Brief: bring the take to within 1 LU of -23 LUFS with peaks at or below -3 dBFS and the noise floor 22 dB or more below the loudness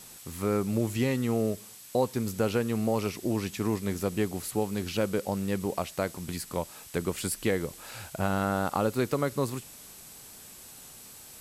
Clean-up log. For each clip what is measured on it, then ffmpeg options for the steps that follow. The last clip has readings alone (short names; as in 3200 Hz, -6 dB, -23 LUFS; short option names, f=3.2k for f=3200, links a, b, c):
steady tone 7800 Hz; tone level -56 dBFS; noise floor -49 dBFS; noise floor target -53 dBFS; loudness -30.5 LUFS; peak -13.0 dBFS; loudness target -23.0 LUFS
-> -af "bandreject=f=7.8k:w=30"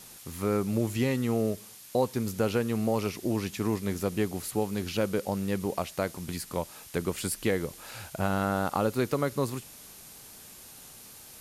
steady tone none; noise floor -49 dBFS; noise floor target -53 dBFS
-> -af "afftdn=nr=6:nf=-49"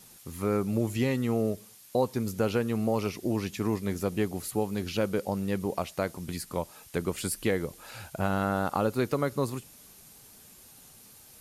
noise floor -53 dBFS; loudness -30.5 LUFS; peak -13.0 dBFS; loudness target -23.0 LUFS
-> -af "volume=7.5dB"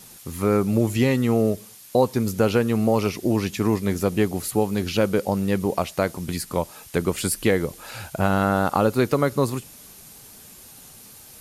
loudness -23.0 LUFS; peak -5.5 dBFS; noise floor -46 dBFS